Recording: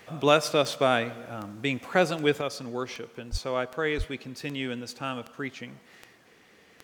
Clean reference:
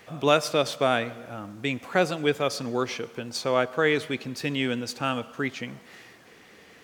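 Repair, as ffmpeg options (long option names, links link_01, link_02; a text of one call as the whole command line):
ffmpeg -i in.wav -filter_complex "[0:a]adeclick=threshold=4,asplit=3[link_01][link_02][link_03];[link_01]afade=type=out:start_time=3.31:duration=0.02[link_04];[link_02]highpass=frequency=140:width=0.5412,highpass=frequency=140:width=1.3066,afade=type=in:start_time=3.31:duration=0.02,afade=type=out:start_time=3.43:duration=0.02[link_05];[link_03]afade=type=in:start_time=3.43:duration=0.02[link_06];[link_04][link_05][link_06]amix=inputs=3:normalize=0,asplit=3[link_07][link_08][link_09];[link_07]afade=type=out:start_time=3.97:duration=0.02[link_10];[link_08]highpass=frequency=140:width=0.5412,highpass=frequency=140:width=1.3066,afade=type=in:start_time=3.97:duration=0.02,afade=type=out:start_time=4.09:duration=0.02[link_11];[link_09]afade=type=in:start_time=4.09:duration=0.02[link_12];[link_10][link_11][link_12]amix=inputs=3:normalize=0,asetnsamples=nb_out_samples=441:pad=0,asendcmd='2.41 volume volume 5.5dB',volume=0dB" out.wav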